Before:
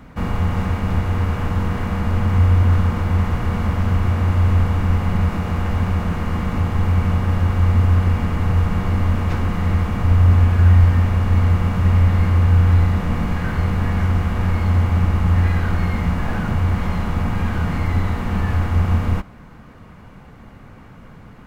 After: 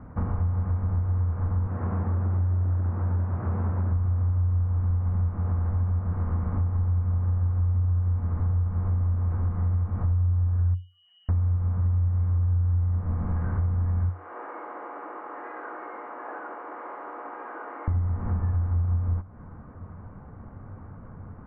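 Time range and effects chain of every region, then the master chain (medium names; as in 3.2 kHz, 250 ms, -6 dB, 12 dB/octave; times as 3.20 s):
1.67–3.91 s: high-pass 110 Hz + loudspeaker Doppler distortion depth 0.95 ms
10.74–11.29 s: spectral contrast enhancement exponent 2.3 + high-pass 460 Hz 6 dB/octave + frequency inversion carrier 3 kHz
14.09–17.88 s: Chebyshev high-pass 300 Hz, order 5 + bass shelf 400 Hz -10 dB
whole clip: low-pass 1.4 kHz 24 dB/octave; peaking EQ 90 Hz +12.5 dB 0.33 oct; compression 6:1, threshold -20 dBFS; trim -3.5 dB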